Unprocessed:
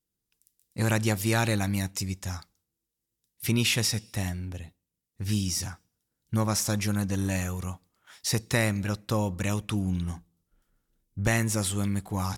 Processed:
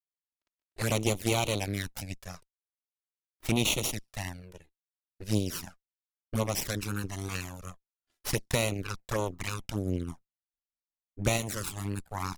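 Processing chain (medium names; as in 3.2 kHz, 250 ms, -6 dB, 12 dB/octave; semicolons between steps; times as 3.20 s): Chebyshev shaper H 4 -27 dB, 6 -13 dB, 7 -17 dB, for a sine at -11.5 dBFS; touch-sensitive flanger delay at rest 3.1 ms, full sweep at -22.5 dBFS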